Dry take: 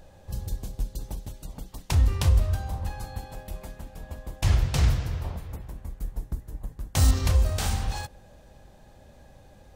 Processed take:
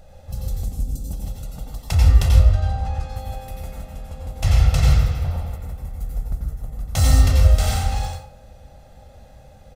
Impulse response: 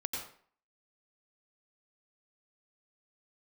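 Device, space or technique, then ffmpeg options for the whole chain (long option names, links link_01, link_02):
microphone above a desk: -filter_complex "[0:a]asettb=1/sr,asplit=3[link_01][link_02][link_03];[link_01]atrim=end=0.644[link_04];[link_02]atrim=start=0.64:end=1.13,asetpts=PTS-STARTPTS,afade=type=in:duration=0.004:curve=qsin,afade=type=out:start_time=0.486:duration=0.004:curve=qsin,equalizer=frequency=250:width_type=o:width=1:gain=9,equalizer=frequency=500:width_type=o:width=1:gain=-5,equalizer=frequency=1000:width_type=o:width=1:gain=-6,equalizer=frequency=2000:width_type=o:width=1:gain=-10,equalizer=frequency=4000:width_type=o:width=1:gain=-5,equalizer=frequency=8000:width_type=o:width=1:gain=4[link_05];[link_03]atrim=start=1.126[link_06];[link_04][link_05]acrossfade=duration=0.004:curve1=hsin:curve2=qsin[link_07];[link_07][link_06]acrossfade=duration=0.004:curve1=qsin:curve2=hsin,asettb=1/sr,asplit=3[link_08][link_09][link_10];[link_08]atrim=end=2.324[link_11];[link_09]atrim=start=2.32:end=3.1,asetpts=PTS-STARTPTS,afade=type=in:duration=0.004:curve=qsin,afade=type=out:start_time=0.776:duration=0.004:curve=qsin,lowpass=6000[link_12];[link_10]atrim=start=3.096[link_13];[link_11][link_12]acrossfade=duration=0.004:curve1=hsin:curve2=qsin[link_14];[link_14][link_13]acrossfade=duration=0.004:curve1=qsin:curve2=hsin,asettb=1/sr,asplit=3[link_15][link_16][link_17];[link_15]atrim=end=3.834[link_18];[link_16]atrim=start=3.83:end=4.3,asetpts=PTS-STARTPTS,afade=type=in:duration=0.004:curve=qsin,afade=type=out:start_time=0.466:duration=0.004:curve=qsin,lowpass=12000[link_19];[link_17]atrim=start=4.296[link_20];[link_18][link_19]acrossfade=duration=0.004:curve1=hsin:curve2=qsin[link_21];[link_21][link_20]acrossfade=duration=0.004:curve1=qsin:curve2=hsin,aecho=1:1:1.5:0.55[link_22];[1:a]atrim=start_sample=2205[link_23];[link_22][link_23]afir=irnorm=-1:irlink=0,volume=1.5dB"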